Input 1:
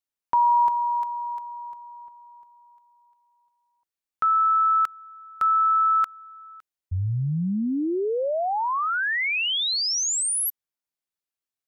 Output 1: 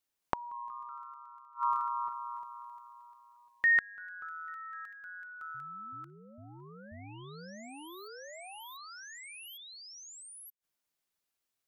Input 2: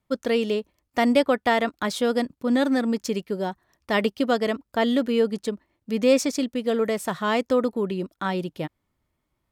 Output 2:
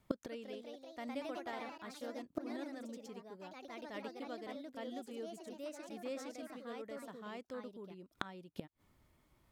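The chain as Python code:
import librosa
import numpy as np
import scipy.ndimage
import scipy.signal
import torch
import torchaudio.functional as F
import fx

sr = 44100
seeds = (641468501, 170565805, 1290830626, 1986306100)

y = fx.echo_pitch(x, sr, ms=218, semitones=2, count=3, db_per_echo=-3.0)
y = fx.gate_flip(y, sr, shuts_db=-24.0, range_db=-30)
y = y * librosa.db_to_amplitude(5.0)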